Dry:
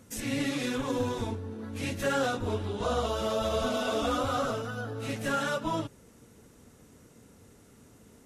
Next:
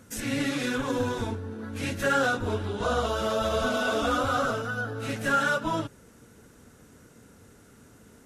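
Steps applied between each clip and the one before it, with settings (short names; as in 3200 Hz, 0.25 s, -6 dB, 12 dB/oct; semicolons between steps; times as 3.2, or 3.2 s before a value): bell 1500 Hz +7.5 dB 0.36 oct; gain +2 dB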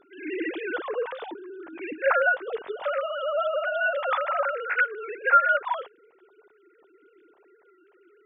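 sine-wave speech; gain +1 dB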